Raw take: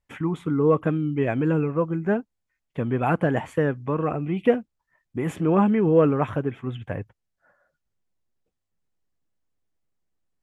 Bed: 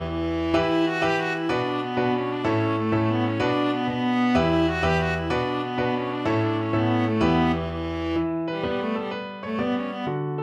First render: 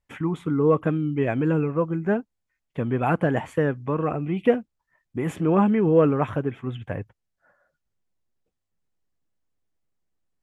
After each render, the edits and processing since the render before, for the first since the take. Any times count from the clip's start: no audible change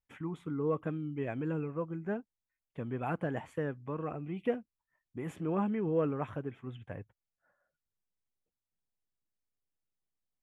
trim -12.5 dB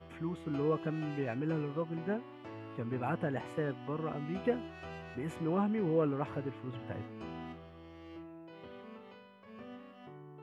add bed -24 dB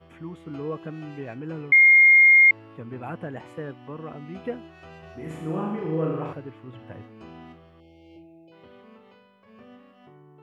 1.72–2.51 s: bleep 2.13 kHz -10.5 dBFS; 4.99–6.33 s: flutter echo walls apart 6.5 m, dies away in 0.95 s; 7.80–8.52 s: brick-wall FIR band-stop 880–2100 Hz

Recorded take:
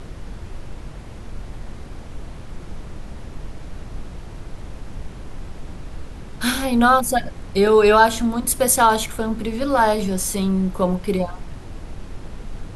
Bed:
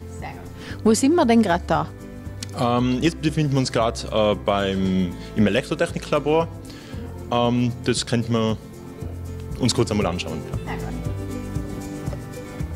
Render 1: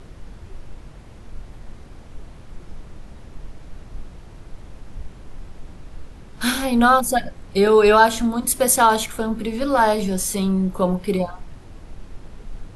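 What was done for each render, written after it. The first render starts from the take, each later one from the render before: noise print and reduce 6 dB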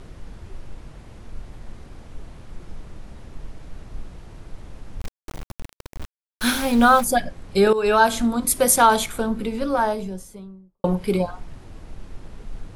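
5.00–7.04 s: small samples zeroed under -29 dBFS; 7.73–8.33 s: fade in equal-power, from -14 dB; 9.13–10.84 s: studio fade out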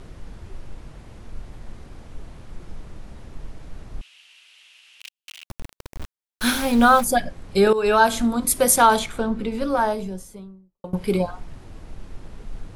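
4.01–5.45 s: resonant high-pass 2.8 kHz, resonance Q 5.3; 8.99–9.52 s: distance through air 60 m; 10.40–10.93 s: fade out, to -23.5 dB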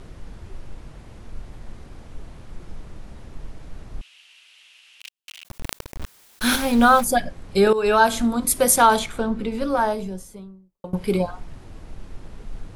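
5.43–6.56 s: decay stretcher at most 39 dB/s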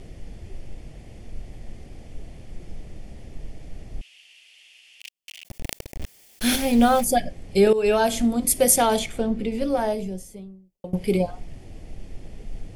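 high-order bell 1.2 kHz -11 dB 1 oct; band-stop 3.9 kHz, Q 9.2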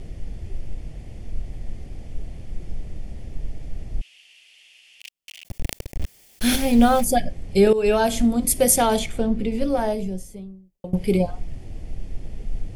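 bass shelf 150 Hz +7.5 dB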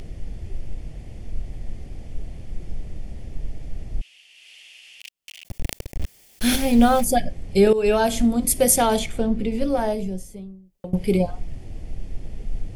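upward compressor, threshold -39 dBFS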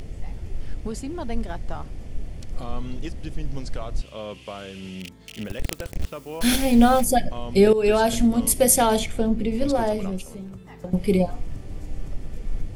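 add bed -15.5 dB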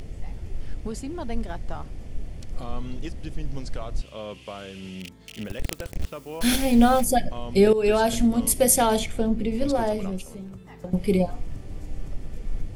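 trim -1.5 dB

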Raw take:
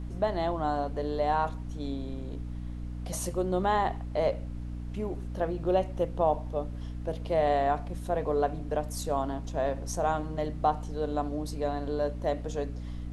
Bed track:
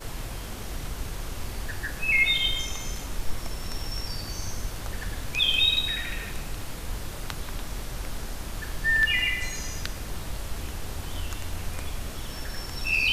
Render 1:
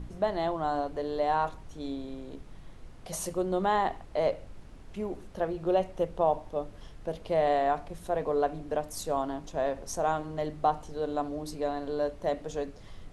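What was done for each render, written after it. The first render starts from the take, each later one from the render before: de-hum 60 Hz, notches 5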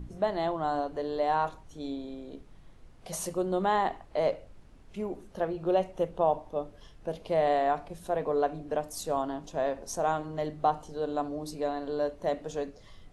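noise print and reduce 6 dB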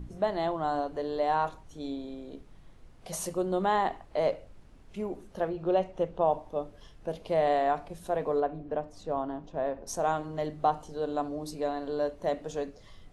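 5.49–6.31 s: distance through air 64 m; 8.40–9.87 s: tape spacing loss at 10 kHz 26 dB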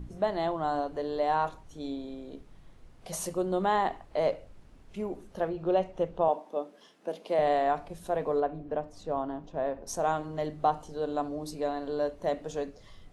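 6.28–7.39 s: steep high-pass 200 Hz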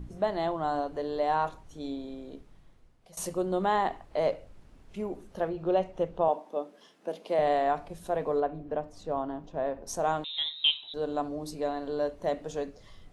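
2.28–3.17 s: fade out, to -18.5 dB; 10.24–10.94 s: frequency inversion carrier 3.9 kHz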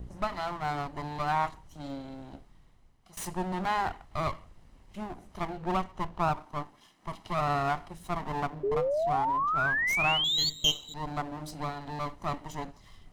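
comb filter that takes the minimum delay 1 ms; 8.63–10.50 s: painted sound rise 390–4600 Hz -28 dBFS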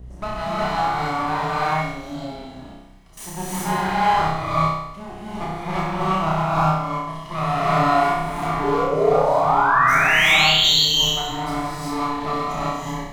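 flutter echo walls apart 5.4 m, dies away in 0.8 s; gated-style reverb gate 410 ms rising, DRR -7 dB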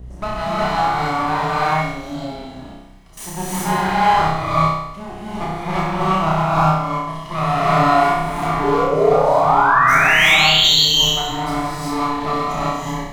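trim +3.5 dB; peak limiter -3 dBFS, peak gain reduction 2 dB

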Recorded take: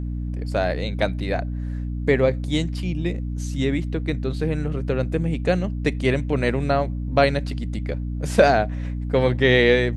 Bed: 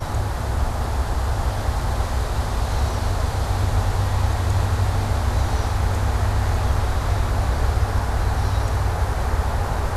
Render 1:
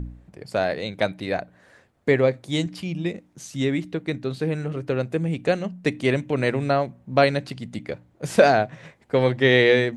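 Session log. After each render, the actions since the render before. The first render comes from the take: de-hum 60 Hz, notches 5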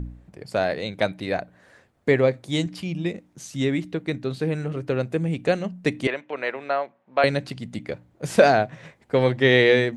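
6.07–7.24 s: band-pass 620–2900 Hz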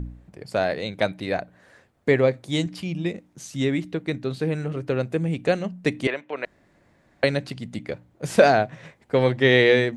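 6.45–7.23 s: room tone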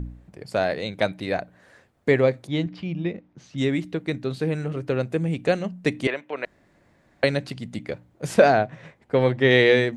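2.47–3.58 s: distance through air 230 m; 8.34–9.51 s: treble shelf 4 kHz -7.5 dB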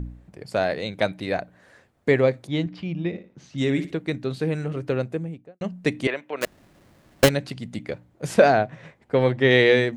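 3.07–3.97 s: flutter echo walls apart 10 m, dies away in 0.34 s; 4.88–5.61 s: studio fade out; 6.41–7.29 s: square wave that keeps the level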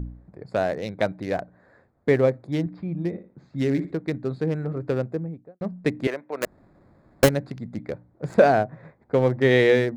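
local Wiener filter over 15 samples; dynamic bell 3.2 kHz, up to -6 dB, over -38 dBFS, Q 0.92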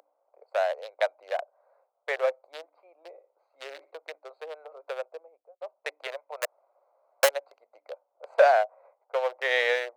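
local Wiener filter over 25 samples; steep high-pass 550 Hz 48 dB/octave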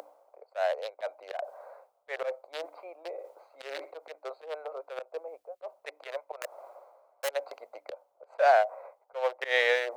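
slow attack 111 ms; reverse; upward compressor, threshold -30 dBFS; reverse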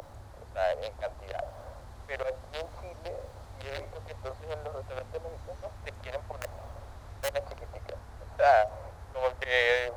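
add bed -25 dB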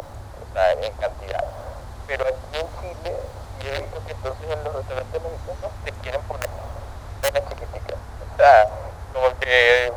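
trim +10.5 dB; peak limiter -2 dBFS, peak gain reduction 1 dB

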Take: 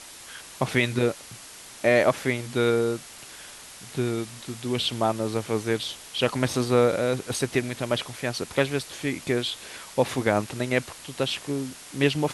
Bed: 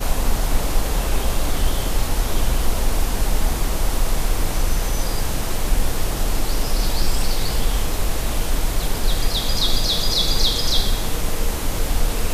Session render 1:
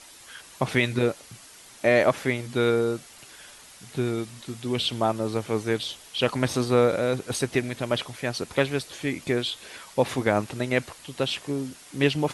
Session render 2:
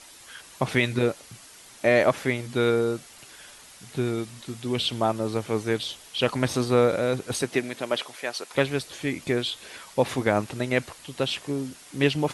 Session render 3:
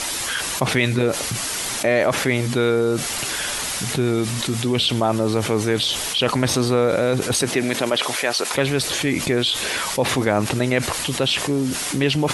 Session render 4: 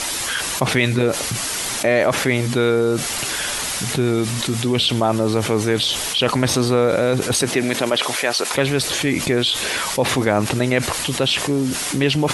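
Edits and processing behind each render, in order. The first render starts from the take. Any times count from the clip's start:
noise reduction 6 dB, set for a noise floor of -45 dBFS
7.42–8.53 s: high-pass 150 Hz -> 630 Hz
level flattener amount 70%
trim +1.5 dB

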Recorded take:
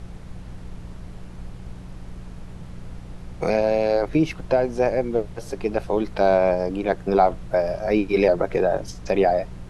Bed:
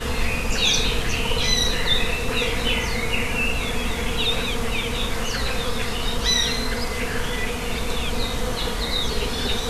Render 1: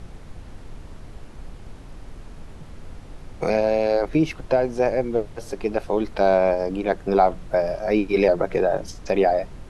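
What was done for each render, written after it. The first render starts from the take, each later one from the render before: de-hum 60 Hz, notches 3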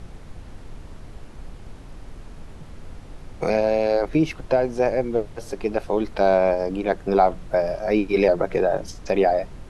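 no audible change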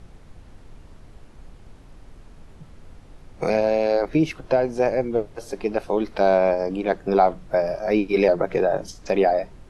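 noise print and reduce 6 dB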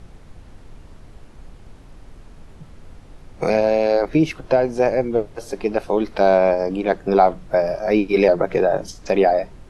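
trim +3 dB

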